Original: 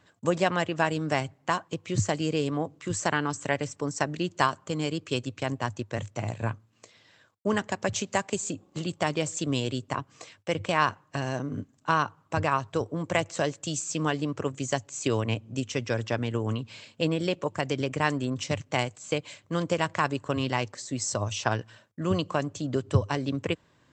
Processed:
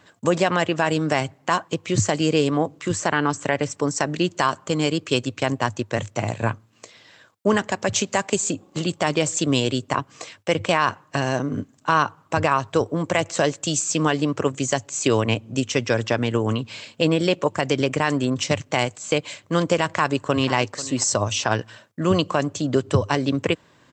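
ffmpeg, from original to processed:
-filter_complex "[0:a]asettb=1/sr,asplit=3[a][b][c];[a]atrim=end=2.924[d];[b]atrim=start=2.92:end=3.7,asetpts=PTS-STARTPTS,afade=t=in:d=0.004:c=qsin,afade=t=out:st=0.776:d=0.004:c=qsin,highshelf=f=4.9k:g=-7.5[e];[c]atrim=start=3.696[f];[d][e]acrossfade=d=0.004:c1=hsin:c2=qsin[g];[g][f]acrossfade=d=0.004:c1=qsin:c2=hsin,asplit=2[h][i];[i]afade=t=in:st=19.85:d=0.01,afade=t=out:st=20.54:d=0.01,aecho=0:1:490|980:0.133352|0.0200028[j];[h][j]amix=inputs=2:normalize=0,lowshelf=f=100:g=-9.5,alimiter=level_in=15dB:limit=-1dB:release=50:level=0:latency=1,volume=-6dB"

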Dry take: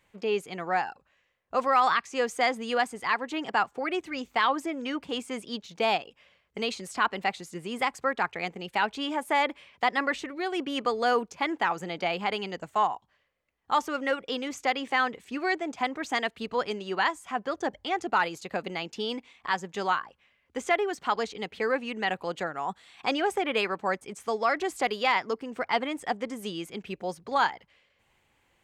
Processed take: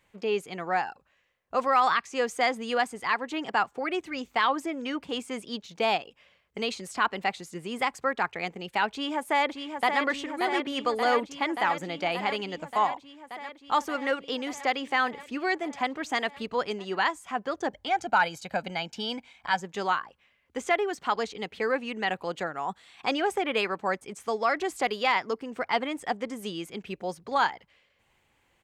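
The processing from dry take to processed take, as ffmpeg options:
-filter_complex "[0:a]asplit=2[a][b];[b]afade=t=in:st=8.91:d=0.01,afade=t=out:st=10.01:d=0.01,aecho=0:1:580|1160|1740|2320|2900|3480|4060|4640|5220|5800|6380|6960:0.501187|0.40095|0.32076|0.256608|0.205286|0.164229|0.131383|0.105107|0.0840853|0.0672682|0.0538146|0.0430517[c];[a][c]amix=inputs=2:normalize=0,asettb=1/sr,asplit=3[d][e][f];[d]atrim=end=17.884[g];[e]atrim=start=17.88:end=19.61,asetpts=PTS-STARTPTS,afade=t=in:d=0.004:c=qsin,afade=t=out:st=1.726:d=0.004:c=qsin,aecho=1:1:1.3:0.6,atrim=end_sample=76293[h];[f]atrim=start=19.606[i];[g][h]acrossfade=d=0.004:c1=hsin:c2=qsin[j];[j][i]acrossfade=d=0.004:c1=qsin:c2=hsin"

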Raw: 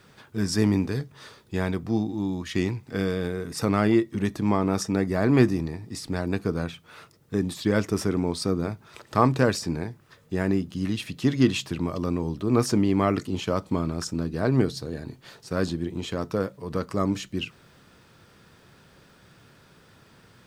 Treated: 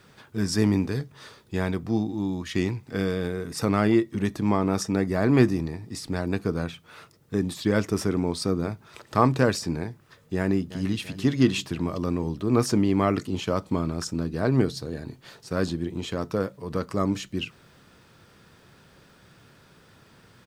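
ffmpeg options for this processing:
-filter_complex "[0:a]asplit=2[a][b];[b]afade=t=in:st=10.36:d=0.01,afade=t=out:st=10.92:d=0.01,aecho=0:1:340|680|1020|1360|1700|2040|2380:0.188365|0.122437|0.0795842|0.0517297|0.0336243|0.0218558|0.0142063[c];[a][c]amix=inputs=2:normalize=0"

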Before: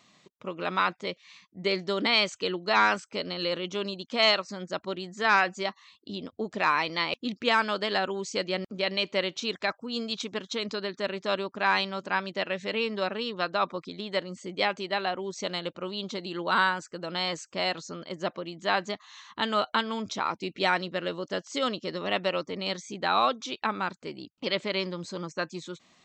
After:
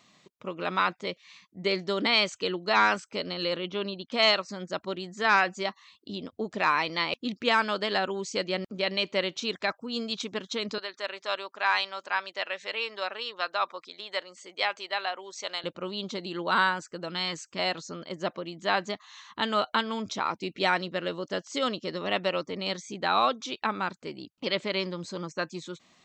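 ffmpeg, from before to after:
-filter_complex "[0:a]asettb=1/sr,asplit=3[a][b][c];[a]atrim=end=3.564[d];[b]atrim=start=3.56:end=4.12,asetpts=PTS-STARTPTS,afade=t=in:d=0.004:c=qsin,afade=t=out:st=0.556:d=0.004:c=qsin,lowpass=f=4.3k:w=0.5412,lowpass=f=4.3k:w=1.3066[e];[c]atrim=start=4.116[f];[d][e]acrossfade=d=0.004:c1=hsin:c2=qsin[g];[g][f]acrossfade=d=0.004:c1=qsin:c2=hsin,asettb=1/sr,asplit=3[h][i][j];[h]atrim=end=10.784[k];[i]atrim=start=10.78:end=15.64,asetpts=PTS-STARTPTS,afade=t=in:d=0.004:c=qsin,afade=t=out:st=4.856:d=0.004:c=qsin,highpass=690[l];[j]atrim=start=15.636[m];[k][l]acrossfade=d=0.004:c1=hsin:c2=qsin[n];[n][m]acrossfade=d=0.004:c1=qsin:c2=hsin,asettb=1/sr,asplit=3[o][p][q];[o]atrim=end=17.084[r];[p]atrim=start=17.08:end=17.59,asetpts=PTS-STARTPTS,afade=t=in:d=0.004:c=qsin,afade=t=out:st=0.506:d=0.004:c=qsin,equalizer=f=610:w=1.5:g=-8.5[s];[q]atrim=start=17.586[t];[r][s]acrossfade=d=0.004:c1=hsin:c2=qsin[u];[u][t]acrossfade=d=0.004:c1=qsin:c2=hsin"

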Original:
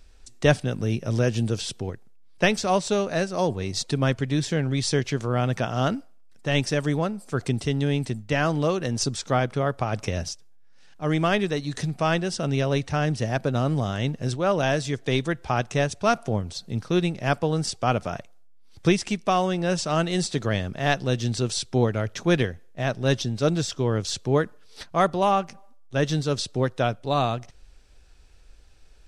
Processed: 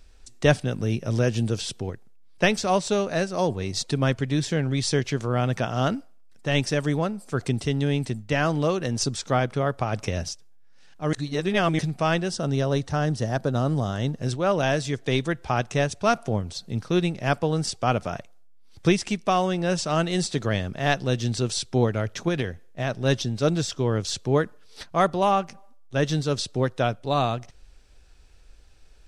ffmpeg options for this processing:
-filter_complex "[0:a]asettb=1/sr,asplit=3[a][b][c];[a]atrim=end=12.314[d];[b]atrim=start=12.31:end=14.21,asetpts=PTS-STARTPTS,afade=t=in:d=0.004:c=qsin,afade=t=out:st=1.896:d=0.004:c=qsin,equalizer=f=2.4k:w=2.5:g=-9[e];[c]atrim=start=14.206[f];[d][e]acrossfade=d=0.004:c1=hsin:c2=qsin[g];[g][f]acrossfade=d=0.004:c1=qsin:c2=hsin,asettb=1/sr,asplit=3[h][i][j];[h]atrim=end=22.284[k];[i]atrim=start=22.28:end=23.05,asetpts=PTS-STARTPTS,afade=t=in:d=0.004:c=qsin,afade=t=out:st=0.766:d=0.004:c=qsin,acompressor=threshold=-20dB:ratio=6:attack=3.2:release=140:knee=1:detection=peak[l];[j]atrim=start=23.046[m];[k][l]acrossfade=d=0.004:c1=hsin:c2=qsin[n];[n][m]acrossfade=d=0.004:c1=qsin:c2=hsin,asplit=3[o][p][q];[o]atrim=end=11.132[r];[p]atrim=start=11.128:end=11.792,asetpts=PTS-STARTPTS,areverse[s];[q]atrim=start=11.788[t];[r][s]acrossfade=d=0.004:c1=hsin:c2=hsin[u];[u][t]acrossfade=d=0.004:c1=hsin:c2=hsin"

